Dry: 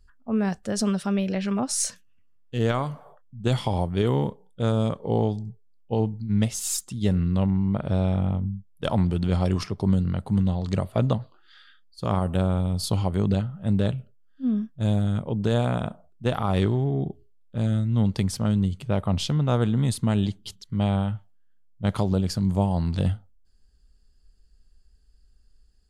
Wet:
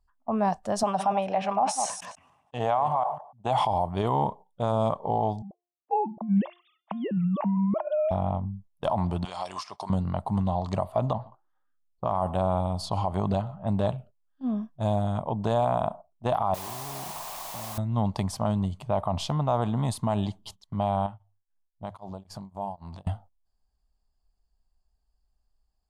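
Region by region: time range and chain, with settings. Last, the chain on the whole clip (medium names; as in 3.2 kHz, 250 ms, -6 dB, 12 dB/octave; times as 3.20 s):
0.83–3.65 s: chunks repeated in reverse 147 ms, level -12 dB + cabinet simulation 140–9600 Hz, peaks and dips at 210 Hz -7 dB, 350 Hz -6 dB, 790 Hz +9 dB, 2.5 kHz +3 dB, 4.5 kHz -8 dB, 7.3 kHz -4 dB + decay stretcher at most 57 dB/s
5.42–8.11 s: formants replaced by sine waves + de-hum 351.3 Hz, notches 28
9.25–9.90 s: frequency weighting ITU-R 468 + compression 16:1, threshold -32 dBFS
11.13–13.97 s: level-controlled noise filter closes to 420 Hz, open at -21 dBFS + delay 124 ms -23 dB
16.54–17.78 s: hum notches 50/100/150/200 Hz + compression 5:1, threshold -38 dBFS + word length cut 6-bit, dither triangular
21.06–23.07 s: hum notches 50/100 Hz + compression 5:1, threshold -32 dBFS + tremolo of two beating tones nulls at 3.8 Hz
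whole clip: gate -42 dBFS, range -10 dB; high-order bell 830 Hz +15 dB 1.1 oct; peak limiter -10.5 dBFS; trim -4.5 dB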